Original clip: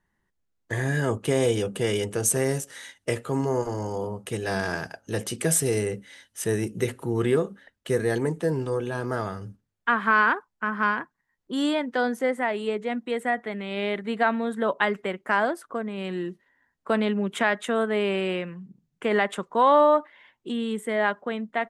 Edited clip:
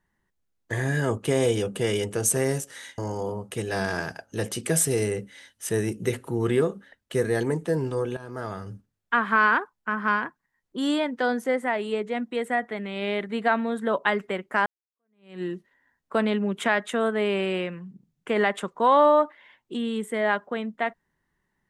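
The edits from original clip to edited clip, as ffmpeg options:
-filter_complex "[0:a]asplit=4[s0][s1][s2][s3];[s0]atrim=end=2.982[s4];[s1]atrim=start=3.728:end=8.92,asetpts=PTS-STARTPTS,afade=t=out:st=5.188:d=0.004:c=hsin:silence=0.188365[s5];[s2]atrim=start=8.92:end=15.41,asetpts=PTS-STARTPTS,afade=t=in:d=0.54:silence=0.188365,afade=t=out:st=6.486:d=0.004:c=hsin[s6];[s3]atrim=start=15.41,asetpts=PTS-STARTPTS,afade=t=in:d=0.76:c=exp[s7];[s5][s6][s7]concat=n=3:v=0:a=1[s8];[s4][s8]acrossfade=d=0.004:c1=hsin:c2=hsin"

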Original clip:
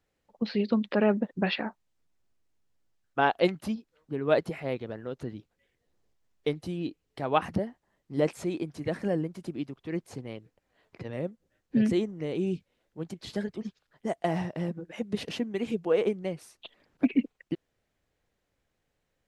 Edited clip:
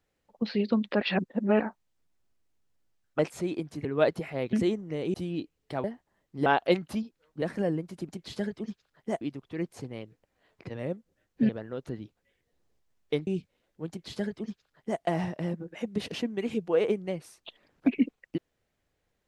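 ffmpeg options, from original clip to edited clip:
-filter_complex "[0:a]asplit=14[s0][s1][s2][s3][s4][s5][s6][s7][s8][s9][s10][s11][s12][s13];[s0]atrim=end=1.012[s14];[s1]atrim=start=1.008:end=1.602,asetpts=PTS-STARTPTS,areverse[s15];[s2]atrim=start=1.598:end=3.192[s16];[s3]atrim=start=8.218:end=8.882[s17];[s4]atrim=start=4.148:end=4.832[s18];[s5]atrim=start=11.828:end=12.442[s19];[s6]atrim=start=6.608:end=7.312[s20];[s7]atrim=start=7.598:end=8.222[s21];[s8]atrim=start=3.188:end=4.152[s22];[s9]atrim=start=8.878:end=9.552[s23];[s10]atrim=start=13.058:end=14.182[s24];[s11]atrim=start=9.548:end=11.832[s25];[s12]atrim=start=4.828:end=6.612[s26];[s13]atrim=start=12.438[s27];[s14][s15]acrossfade=d=0.004:c1=hsin:c2=hsin[s28];[s28][s16]acrossfade=d=0.004:c1=hsin:c2=hsin[s29];[s29][s17]acrossfade=d=0.004:c1=hsin:c2=hsin[s30];[s30][s18]acrossfade=d=0.004:c1=hsin:c2=hsin[s31];[s31][s19]acrossfade=d=0.004:c1=hsin:c2=hsin[s32];[s32][s20]acrossfade=d=0.004:c1=hsin:c2=hsin[s33];[s33][s21]acrossfade=d=0.004:c1=hsin:c2=hsin[s34];[s34][s22]acrossfade=d=0.004:c1=hsin:c2=hsin[s35];[s35][s23]acrossfade=d=0.004:c1=hsin:c2=hsin[s36];[s36][s24]acrossfade=d=0.004:c1=hsin:c2=hsin[s37];[s37][s25]acrossfade=d=0.004:c1=hsin:c2=hsin[s38];[s38][s26]acrossfade=d=0.004:c1=hsin:c2=hsin[s39];[s39][s27]acrossfade=d=0.004:c1=hsin:c2=hsin"

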